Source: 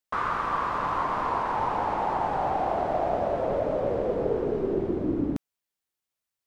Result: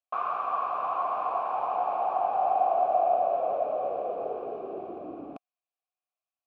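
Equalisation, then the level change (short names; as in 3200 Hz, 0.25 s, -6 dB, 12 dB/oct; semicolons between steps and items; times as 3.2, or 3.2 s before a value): vowel filter a; +6.5 dB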